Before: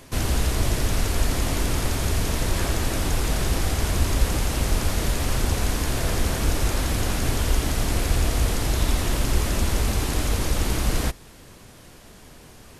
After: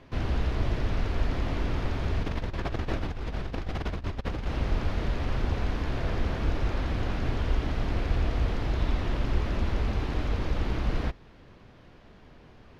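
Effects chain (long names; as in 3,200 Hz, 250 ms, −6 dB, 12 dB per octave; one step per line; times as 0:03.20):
0:02.23–0:04.46: compressor whose output falls as the input rises −25 dBFS, ratio −0.5
high-frequency loss of the air 270 metres
level −4.5 dB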